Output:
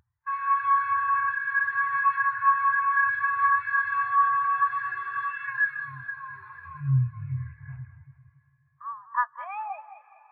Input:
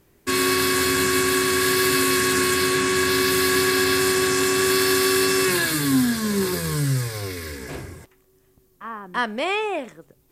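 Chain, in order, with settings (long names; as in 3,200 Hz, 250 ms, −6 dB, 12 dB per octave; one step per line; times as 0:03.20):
loose part that buzzes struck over −31 dBFS, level −27 dBFS
drawn EQ curve 130 Hz 0 dB, 180 Hz −30 dB, 360 Hz −24 dB, 860 Hz +3 dB, 1,400 Hz +4 dB, 4,000 Hz −6 dB, 6,100 Hz −21 dB, 9,800 Hz −5 dB
four-comb reverb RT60 3.8 s, combs from 32 ms, DRR 12 dB
upward compression, threshold −19 dBFS
high-pass filter 89 Hz 12 dB per octave
high-shelf EQ 7,800 Hz −7 dB
echo with a time of its own for lows and highs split 340 Hz, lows 390 ms, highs 208 ms, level −6 dB
every bin expanded away from the loudest bin 2.5 to 1
level −2.5 dB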